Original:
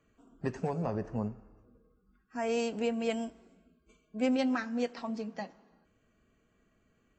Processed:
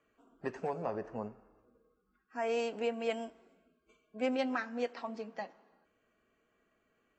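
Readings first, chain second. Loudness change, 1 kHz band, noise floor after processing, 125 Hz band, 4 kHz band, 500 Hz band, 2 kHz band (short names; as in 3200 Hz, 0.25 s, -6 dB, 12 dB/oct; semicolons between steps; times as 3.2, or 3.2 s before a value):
-3.5 dB, 0.0 dB, -77 dBFS, under -10 dB, -2.5 dB, -1.0 dB, -0.5 dB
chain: tone controls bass -14 dB, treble -8 dB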